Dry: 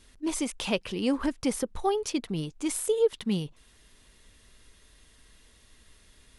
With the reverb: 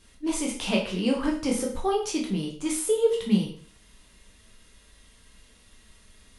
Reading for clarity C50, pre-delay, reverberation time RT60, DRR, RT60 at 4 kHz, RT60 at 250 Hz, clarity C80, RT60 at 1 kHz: 6.5 dB, 6 ms, 0.45 s, -1.5 dB, 0.45 s, 0.50 s, 11.0 dB, 0.45 s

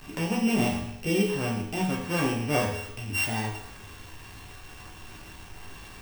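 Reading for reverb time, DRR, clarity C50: 0.75 s, -4.0 dB, 3.5 dB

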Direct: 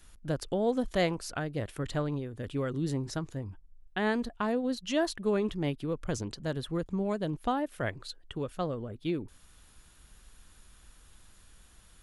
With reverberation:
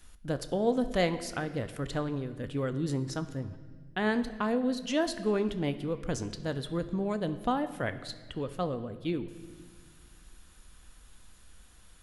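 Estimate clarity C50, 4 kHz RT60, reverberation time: 12.5 dB, 1.4 s, 1.7 s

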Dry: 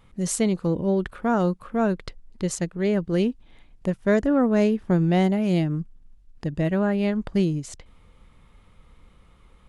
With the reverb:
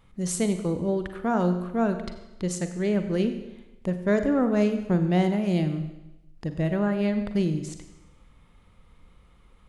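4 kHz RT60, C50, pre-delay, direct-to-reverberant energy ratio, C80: 0.95 s, 9.5 dB, 39 ms, 8.0 dB, 10.5 dB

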